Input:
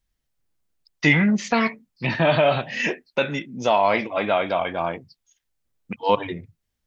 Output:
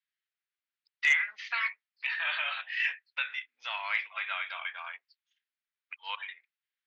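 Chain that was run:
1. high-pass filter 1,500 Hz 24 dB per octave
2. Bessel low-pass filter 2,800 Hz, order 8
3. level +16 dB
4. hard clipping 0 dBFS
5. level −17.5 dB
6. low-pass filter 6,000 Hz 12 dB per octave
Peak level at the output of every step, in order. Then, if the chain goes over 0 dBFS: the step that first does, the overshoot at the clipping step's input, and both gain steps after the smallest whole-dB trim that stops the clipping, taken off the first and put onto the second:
−7.5, −9.5, +6.5, 0.0, −17.5, −17.0 dBFS
step 3, 6.5 dB
step 3 +9 dB, step 5 −10.5 dB

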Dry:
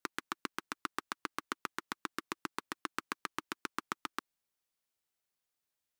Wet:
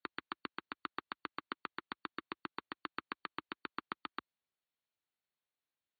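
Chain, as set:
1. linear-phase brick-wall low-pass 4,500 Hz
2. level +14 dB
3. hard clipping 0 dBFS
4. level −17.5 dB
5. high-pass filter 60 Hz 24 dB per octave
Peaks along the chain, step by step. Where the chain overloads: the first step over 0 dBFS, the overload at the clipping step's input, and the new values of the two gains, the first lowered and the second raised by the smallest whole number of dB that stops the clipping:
−15.5, −1.5, −1.5, −19.0, −19.5 dBFS
no step passes full scale

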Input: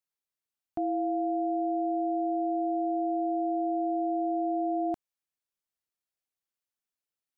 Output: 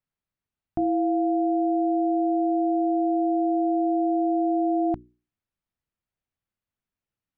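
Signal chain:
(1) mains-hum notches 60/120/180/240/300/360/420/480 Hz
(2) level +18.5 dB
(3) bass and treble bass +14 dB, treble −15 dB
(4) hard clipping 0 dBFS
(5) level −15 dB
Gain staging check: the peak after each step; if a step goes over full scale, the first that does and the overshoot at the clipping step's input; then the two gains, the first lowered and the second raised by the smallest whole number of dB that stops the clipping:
−22.5, −4.0, −1.5, −1.5, −16.5 dBFS
no step passes full scale

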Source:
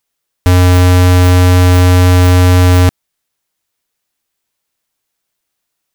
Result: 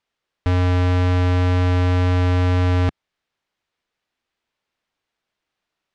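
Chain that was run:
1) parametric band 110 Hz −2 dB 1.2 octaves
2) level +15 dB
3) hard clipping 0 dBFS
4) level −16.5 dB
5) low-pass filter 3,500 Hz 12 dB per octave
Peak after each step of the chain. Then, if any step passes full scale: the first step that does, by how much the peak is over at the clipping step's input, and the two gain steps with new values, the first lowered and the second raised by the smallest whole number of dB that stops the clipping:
−6.0, +9.0, 0.0, −16.5, −15.5 dBFS
step 2, 9.0 dB
step 2 +6 dB, step 4 −7.5 dB

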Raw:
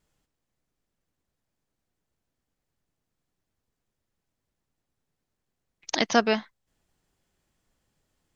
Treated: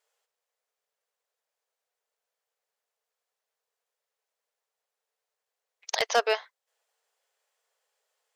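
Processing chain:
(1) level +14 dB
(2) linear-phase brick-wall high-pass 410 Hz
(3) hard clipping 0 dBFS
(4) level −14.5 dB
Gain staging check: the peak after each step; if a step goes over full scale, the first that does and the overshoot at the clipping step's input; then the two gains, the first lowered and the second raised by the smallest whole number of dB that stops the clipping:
+7.0, +6.5, 0.0, −14.5 dBFS
step 1, 6.5 dB
step 1 +7 dB, step 4 −7.5 dB

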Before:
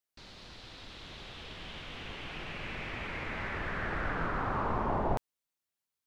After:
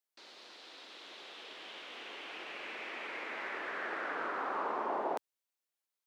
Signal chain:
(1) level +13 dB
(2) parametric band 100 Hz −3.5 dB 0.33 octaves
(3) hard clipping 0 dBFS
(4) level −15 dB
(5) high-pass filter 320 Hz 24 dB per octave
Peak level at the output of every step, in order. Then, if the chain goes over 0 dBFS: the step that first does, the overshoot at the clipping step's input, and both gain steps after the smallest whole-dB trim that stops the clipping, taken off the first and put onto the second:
−3.0, −3.5, −3.5, −18.5, −23.5 dBFS
no step passes full scale

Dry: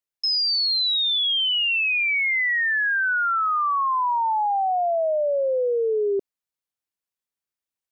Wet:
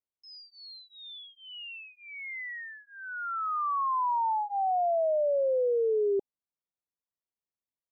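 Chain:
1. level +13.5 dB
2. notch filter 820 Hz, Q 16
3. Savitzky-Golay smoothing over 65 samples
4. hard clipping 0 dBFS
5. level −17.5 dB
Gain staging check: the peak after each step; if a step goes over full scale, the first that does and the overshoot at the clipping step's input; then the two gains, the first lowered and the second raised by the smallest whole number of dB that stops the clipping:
−5.5, −5.5, −5.5, −5.5, −23.0 dBFS
no step passes full scale

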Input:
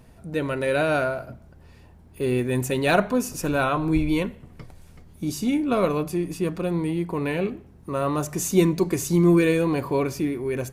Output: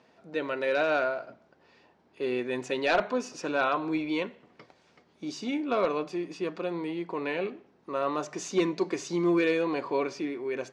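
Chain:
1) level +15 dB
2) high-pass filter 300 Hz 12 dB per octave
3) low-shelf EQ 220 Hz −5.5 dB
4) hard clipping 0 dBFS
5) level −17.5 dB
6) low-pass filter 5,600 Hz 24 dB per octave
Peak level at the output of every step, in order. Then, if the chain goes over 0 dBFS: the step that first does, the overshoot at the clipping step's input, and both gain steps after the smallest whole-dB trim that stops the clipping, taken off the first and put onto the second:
+8.0, +9.0, +8.5, 0.0, −17.5, −16.5 dBFS
step 1, 8.5 dB
step 1 +6 dB, step 5 −8.5 dB

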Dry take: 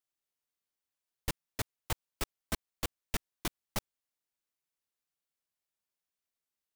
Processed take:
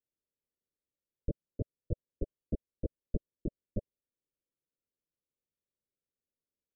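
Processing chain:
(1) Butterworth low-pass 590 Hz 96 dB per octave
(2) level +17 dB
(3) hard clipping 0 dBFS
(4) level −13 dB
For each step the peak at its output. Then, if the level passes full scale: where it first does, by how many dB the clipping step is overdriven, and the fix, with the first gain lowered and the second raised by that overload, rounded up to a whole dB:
−22.0, −5.0, −5.0, −18.0 dBFS
no step passes full scale

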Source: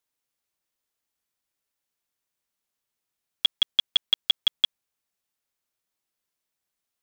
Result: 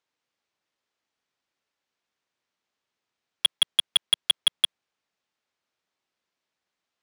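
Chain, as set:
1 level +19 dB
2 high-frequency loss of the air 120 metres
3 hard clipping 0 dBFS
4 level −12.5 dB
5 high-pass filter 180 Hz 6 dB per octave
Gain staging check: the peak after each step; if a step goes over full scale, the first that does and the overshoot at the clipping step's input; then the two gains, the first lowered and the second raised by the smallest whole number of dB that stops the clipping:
+8.0, +5.5, 0.0, −12.5, −11.5 dBFS
step 1, 5.5 dB
step 1 +13 dB, step 4 −6.5 dB

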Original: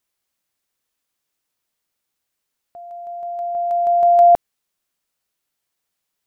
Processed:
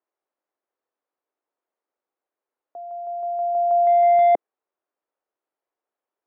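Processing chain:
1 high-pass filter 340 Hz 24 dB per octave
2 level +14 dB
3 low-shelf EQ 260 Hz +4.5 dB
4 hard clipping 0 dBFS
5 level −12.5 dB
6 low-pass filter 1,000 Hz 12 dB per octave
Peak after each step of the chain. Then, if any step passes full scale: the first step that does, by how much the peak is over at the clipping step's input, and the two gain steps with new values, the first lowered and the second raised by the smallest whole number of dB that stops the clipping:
−6.0, +8.0, +8.5, 0.0, −12.5, −12.0 dBFS
step 2, 8.5 dB
step 2 +5 dB, step 5 −3.5 dB

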